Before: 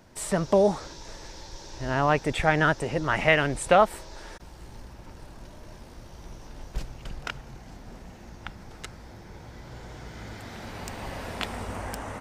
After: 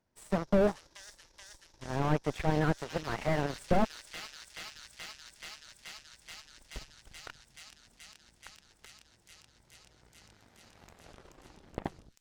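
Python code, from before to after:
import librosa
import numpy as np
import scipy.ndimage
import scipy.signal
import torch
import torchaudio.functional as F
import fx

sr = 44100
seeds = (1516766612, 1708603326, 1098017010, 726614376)

p1 = fx.tape_stop_end(x, sr, length_s=1.46)
p2 = fx.cheby_harmonics(p1, sr, harmonics=(5, 7, 8), levels_db=(-45, -17, -33), full_scale_db=-6.0)
p3 = p2 + fx.echo_wet_highpass(p2, sr, ms=429, feedback_pct=83, hz=5000.0, wet_db=-8, dry=0)
p4 = fx.slew_limit(p3, sr, full_power_hz=25.0)
y = F.gain(torch.from_numpy(p4), 3.5).numpy()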